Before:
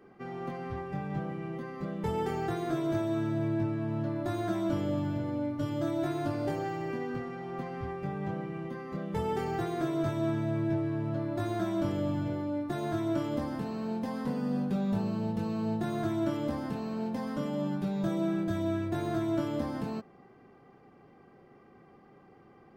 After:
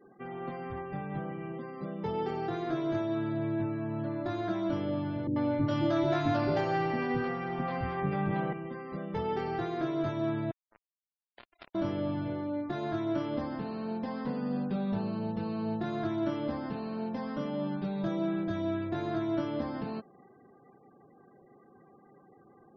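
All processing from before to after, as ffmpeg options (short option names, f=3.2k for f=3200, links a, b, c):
-filter_complex "[0:a]asettb=1/sr,asplit=3[a][b][c];[a]atrim=end=1.524[d];[b]atrim=start=1.52:end=2.54,asetpts=PTS-STARTPTS,afade=t=in:d=0.004:c=qsin,afade=t=out:st=1.016:d=0.004:c=qsin,highpass=92,equalizer=f=1.8k:t=o:w=1:g=-4[e];[c]atrim=start=2.536[f];[d][e]acrossfade=d=0.004:c1=hsin:c2=qsin[g];[g][f]acrossfade=d=0.004:c1=qsin:c2=hsin,asettb=1/sr,asplit=3[h][i][j];[h]atrim=end=5.274[k];[i]atrim=start=5.27:end=8.53,asetpts=PTS-STARTPTS,afade=t=in:d=0.004:c=qsin,afade=t=out:st=3.256:d=0.004:c=qsin,acontrast=85,acrossover=split=420[l][m];[m]adelay=90[n];[l][n]amix=inputs=2:normalize=0,atrim=end_sample=143766[o];[j]atrim=start=8.526[p];[k][o]acrossfade=d=0.004:c1=hsin:c2=qsin[q];[q][p]acrossfade=d=0.004:c1=qsin:c2=hsin,asettb=1/sr,asplit=3[r][s][t];[r]atrim=end=10.514[u];[s]atrim=start=10.51:end=11.75,asetpts=PTS-STARTPTS,afade=t=in:d=0.004:c=qsin,afade=t=out:st=1.236:d=0.004:c=qsin,highpass=740,lowpass=6.3k,acrusher=bits=4:mix=0:aa=0.5[v];[t]atrim=start=11.746[w];[u][v]acrossfade=d=0.004:c1=hsin:c2=qsin[x];[x][w]acrossfade=d=0.004:c1=qsin:c2=hsin,lowpass=f=5.3k:w=0.5412,lowpass=f=5.3k:w=1.3066,equalizer=f=76:t=o:w=2.6:g=-4.5,afftfilt=real='re*gte(hypot(re,im),0.00178)':imag='im*gte(hypot(re,im),0.00178)':win_size=1024:overlap=0.75"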